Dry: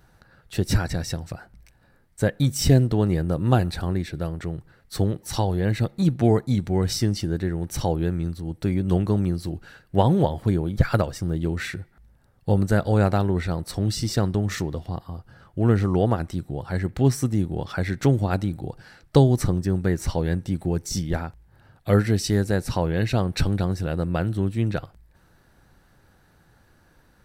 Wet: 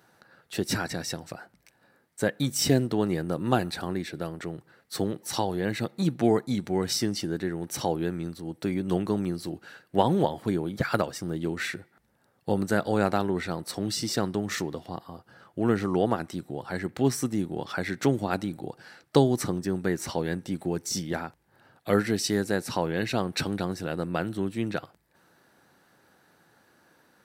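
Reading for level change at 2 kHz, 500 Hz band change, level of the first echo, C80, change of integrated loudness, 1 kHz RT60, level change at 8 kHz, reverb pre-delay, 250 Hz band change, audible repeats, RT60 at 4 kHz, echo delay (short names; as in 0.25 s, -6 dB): 0.0 dB, -2.0 dB, none, none, -4.5 dB, none, 0.0 dB, none, -3.5 dB, none, none, none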